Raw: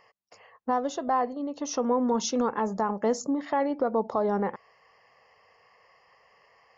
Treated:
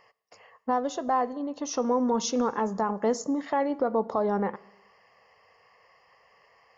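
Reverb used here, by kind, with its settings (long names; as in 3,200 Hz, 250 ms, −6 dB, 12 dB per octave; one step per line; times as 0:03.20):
dense smooth reverb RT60 1 s, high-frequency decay 0.95×, DRR 18.5 dB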